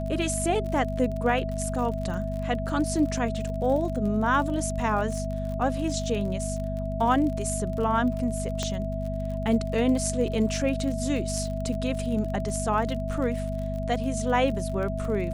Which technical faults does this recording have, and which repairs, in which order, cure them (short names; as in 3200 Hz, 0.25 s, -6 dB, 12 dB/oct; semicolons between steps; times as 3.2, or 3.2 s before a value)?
crackle 45/s -33 dBFS
hum 50 Hz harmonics 5 -31 dBFS
tone 650 Hz -33 dBFS
8.63 pop -15 dBFS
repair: de-click; notch 650 Hz, Q 30; de-hum 50 Hz, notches 5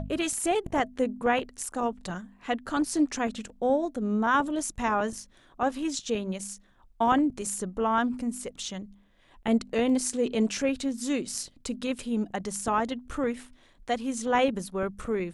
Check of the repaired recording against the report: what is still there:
none